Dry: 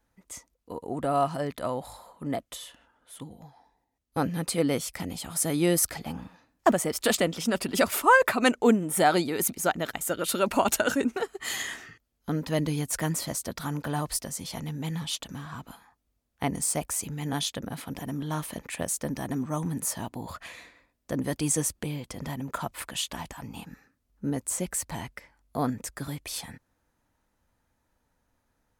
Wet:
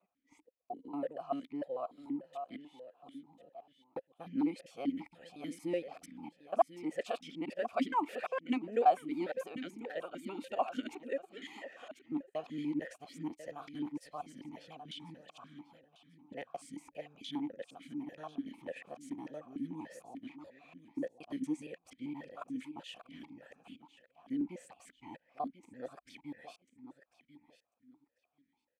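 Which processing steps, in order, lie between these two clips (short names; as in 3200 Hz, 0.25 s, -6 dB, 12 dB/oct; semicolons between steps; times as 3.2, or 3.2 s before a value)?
local time reversal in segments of 0.233 s; feedback echo 1.044 s, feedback 20%, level -13 dB; vowel sequencer 6.8 Hz; gain -1 dB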